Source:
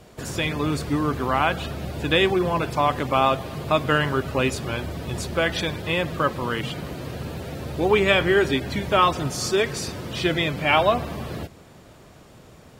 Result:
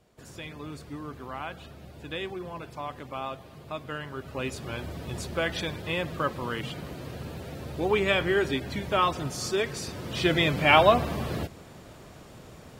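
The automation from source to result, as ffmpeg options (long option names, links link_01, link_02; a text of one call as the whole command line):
ffmpeg -i in.wav -af "volume=0.5dB,afade=type=in:start_time=4.09:duration=0.81:silence=0.334965,afade=type=in:start_time=9.86:duration=0.68:silence=0.473151" out.wav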